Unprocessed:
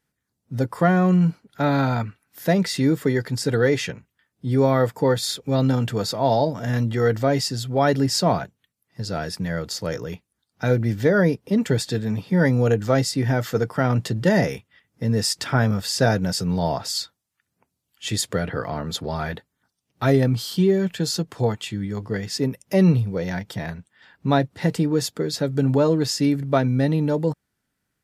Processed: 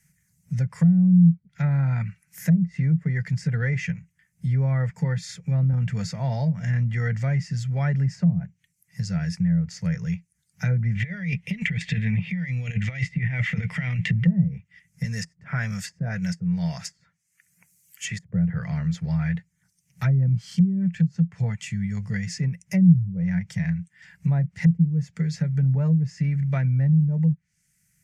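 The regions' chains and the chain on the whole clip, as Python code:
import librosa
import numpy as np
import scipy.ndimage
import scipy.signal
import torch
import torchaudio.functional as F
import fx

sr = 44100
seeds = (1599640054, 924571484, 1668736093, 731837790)

y = fx.chain(x, sr, fx.highpass(hz=61.0, slope=12),
    fx.high_shelf(hz=4600.0, db=-7.5), at=(4.89, 5.73))
y = fx.chain(y, sr, fx.band_shelf(hz=2700.0, db=14.5, octaves=1.2),
    fx.over_compress(threshold_db=-23.0, ratio=-0.5),
    fx.brickwall_lowpass(high_hz=13000.0), at=(10.95, 14.25))
y = fx.chain(y, sr, fx.tilt_eq(slope=3.0),
    fx.notch(hz=870.0, q=14.0), at=(15.04, 18.25))
y = fx.curve_eq(y, sr, hz=(120.0, 170.0, 290.0, 530.0, 1200.0, 2100.0, 3700.0, 6300.0, 13000.0), db=(0, 9, -26, -17, -15, 3, -14, 6, 2))
y = fx.env_lowpass_down(y, sr, base_hz=310.0, full_db=-14.5)
y = fx.band_squash(y, sr, depth_pct=40)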